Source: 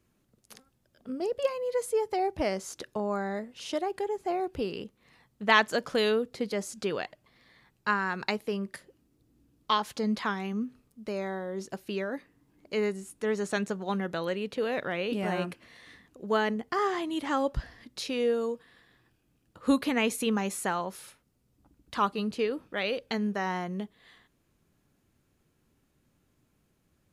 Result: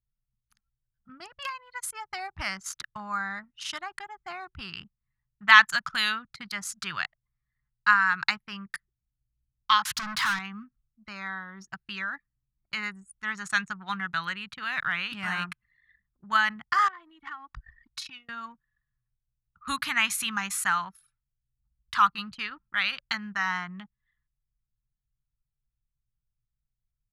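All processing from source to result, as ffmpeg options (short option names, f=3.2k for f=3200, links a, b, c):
-filter_complex "[0:a]asettb=1/sr,asplit=3[a][b][c];[a]atrim=end=9.854[d];[b]atrim=start=9.85:end=10.39,asetpts=PTS-STARTPTS,afade=t=in:d=0.004:c=qsin,afade=t=out:st=0.536:d=0.004:c=qsin,asoftclip=type=hard:threshold=-36.5dB,acontrast=88[e];[c]atrim=start=10.386[f];[d][e]acrossfade=d=0.004:c1=hsin:c2=qsin[g];[g][f]acrossfade=d=0.004:c1=qsin:c2=hsin,asettb=1/sr,asplit=3[h][i][j];[h]atrim=end=16.884[k];[i]atrim=start=16.88:end=18.29,asetpts=PTS-STARTPTS,afade=t=in:d=0.004:c=qsin,afade=t=out:st=1.406:d=0.004:c=qsin,aecho=1:1:2.7:0.64,atrim=end_sample=62181,acompressor=threshold=-37dB:ratio=20:attack=3.2:release=140:knee=1:detection=peak[l];[j]atrim=start=18.286[m];[k][l]acrossfade=d=0.004:c1=hsin:c2=qsin[n];[n][m]acrossfade=d=0.004:c1=qsin:c2=hsin,equalizer=f=460:t=o:w=0.29:g=-15,anlmdn=0.251,firequalizer=gain_entry='entry(150,0);entry(240,-14);entry(510,-21);entry(840,-2);entry(1300,11);entry(2400,6)':delay=0.05:min_phase=1"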